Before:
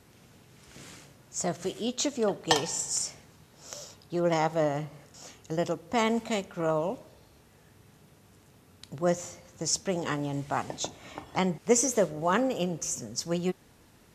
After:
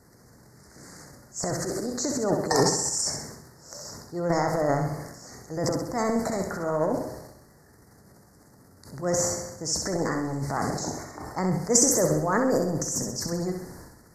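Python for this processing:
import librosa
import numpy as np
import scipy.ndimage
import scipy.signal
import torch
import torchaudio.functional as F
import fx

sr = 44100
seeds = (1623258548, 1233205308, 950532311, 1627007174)

p1 = fx.transient(x, sr, attack_db=-4, sustain_db=12)
p2 = scipy.signal.sosfilt(scipy.signal.ellip(3, 1.0, 60, [1900.0, 4600.0], 'bandstop', fs=sr, output='sos'), p1)
p3 = fx.hpss(p2, sr, part='percussive', gain_db=3)
y = p3 + fx.echo_feedback(p3, sr, ms=65, feedback_pct=50, wet_db=-6.0, dry=0)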